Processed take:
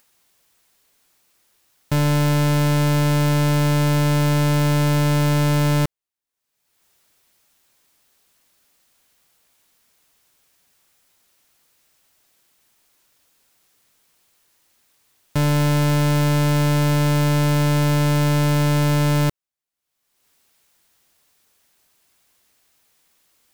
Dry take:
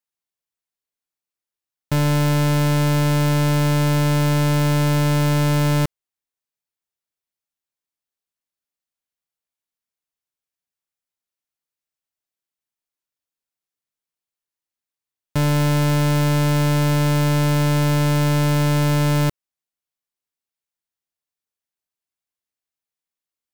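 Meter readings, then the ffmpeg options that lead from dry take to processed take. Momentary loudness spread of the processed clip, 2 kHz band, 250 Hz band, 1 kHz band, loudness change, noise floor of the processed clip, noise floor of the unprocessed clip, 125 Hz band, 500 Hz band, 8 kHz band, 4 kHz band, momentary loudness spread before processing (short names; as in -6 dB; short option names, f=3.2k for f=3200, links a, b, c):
2 LU, 0.0 dB, 0.0 dB, 0.0 dB, 0.0 dB, -79 dBFS, under -85 dBFS, 0.0 dB, 0.0 dB, 0.0 dB, 0.0 dB, 2 LU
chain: -af "acompressor=mode=upward:threshold=-41dB:ratio=2.5"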